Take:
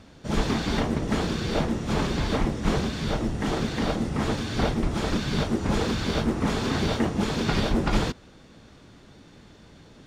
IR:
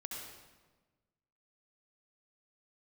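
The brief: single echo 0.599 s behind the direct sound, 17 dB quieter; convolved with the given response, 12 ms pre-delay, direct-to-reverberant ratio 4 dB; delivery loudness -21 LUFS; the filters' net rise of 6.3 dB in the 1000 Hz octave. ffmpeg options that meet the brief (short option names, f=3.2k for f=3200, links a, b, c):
-filter_complex "[0:a]equalizer=f=1k:t=o:g=8,aecho=1:1:599:0.141,asplit=2[a][b];[1:a]atrim=start_sample=2205,adelay=12[c];[b][c]afir=irnorm=-1:irlink=0,volume=-3dB[d];[a][d]amix=inputs=2:normalize=0,volume=3dB"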